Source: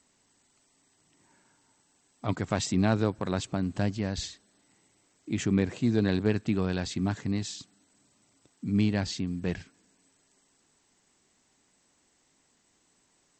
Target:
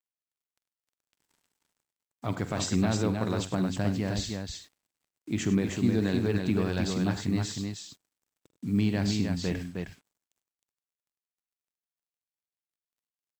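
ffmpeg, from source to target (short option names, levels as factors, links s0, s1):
-filter_complex "[0:a]alimiter=limit=0.15:level=0:latency=1:release=75,acrusher=bits=8:mix=0:aa=0.5,asplit=2[s0][s1];[s1]aecho=0:1:46|78|100|312:0.2|0.141|0.2|0.596[s2];[s0][s2]amix=inputs=2:normalize=0"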